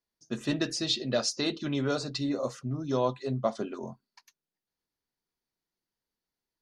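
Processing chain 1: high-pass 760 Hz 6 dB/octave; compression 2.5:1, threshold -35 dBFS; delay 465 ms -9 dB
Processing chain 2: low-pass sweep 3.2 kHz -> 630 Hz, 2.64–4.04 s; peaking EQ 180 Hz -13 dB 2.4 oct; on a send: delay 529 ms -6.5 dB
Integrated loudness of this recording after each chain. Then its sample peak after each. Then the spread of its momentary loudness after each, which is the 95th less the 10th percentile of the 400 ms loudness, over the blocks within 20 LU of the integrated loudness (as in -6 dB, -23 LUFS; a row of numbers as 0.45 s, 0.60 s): -38.5 LUFS, -32.0 LUFS; -21.0 dBFS, -12.0 dBFS; 13 LU, 14 LU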